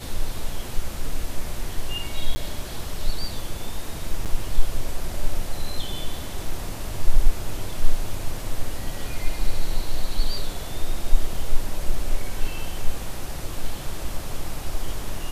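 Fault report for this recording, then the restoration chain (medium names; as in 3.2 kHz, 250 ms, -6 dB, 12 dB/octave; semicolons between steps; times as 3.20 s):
2.35–2.36 s: dropout 10 ms
4.25–4.26 s: dropout 7.7 ms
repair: interpolate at 2.35 s, 10 ms; interpolate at 4.25 s, 7.7 ms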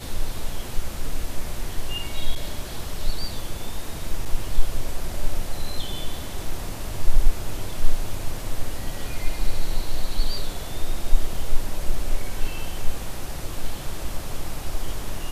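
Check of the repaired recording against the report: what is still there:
nothing left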